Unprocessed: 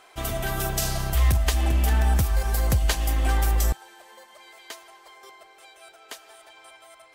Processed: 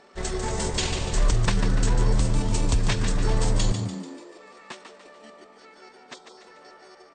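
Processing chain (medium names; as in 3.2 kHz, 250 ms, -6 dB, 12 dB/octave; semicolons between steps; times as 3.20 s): spectral selection erased 6.14–6.37 s, 2.4–5.4 kHz; pitch shift -10 st; on a send: frequency-shifting echo 146 ms, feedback 49%, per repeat +80 Hz, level -8 dB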